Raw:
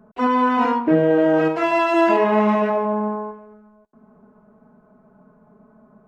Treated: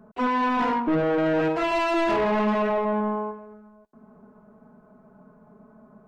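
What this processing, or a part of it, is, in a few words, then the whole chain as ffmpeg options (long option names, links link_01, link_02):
saturation between pre-emphasis and de-emphasis: -af "highshelf=frequency=3700:gain=10,asoftclip=type=tanh:threshold=-19dB,highshelf=frequency=3700:gain=-10"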